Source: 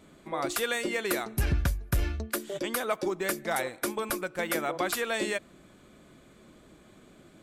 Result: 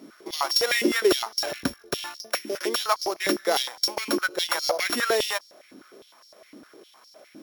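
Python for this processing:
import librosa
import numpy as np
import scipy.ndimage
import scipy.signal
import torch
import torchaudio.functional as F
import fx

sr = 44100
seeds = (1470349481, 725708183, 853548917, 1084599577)

y = np.r_[np.sort(x[:len(x) // 8 * 8].reshape(-1, 8), axis=1).ravel(), x[len(x) // 8 * 8:]]
y = fx.filter_held_highpass(y, sr, hz=9.8, low_hz=270.0, high_hz=4900.0)
y = y * 10.0 ** (3.5 / 20.0)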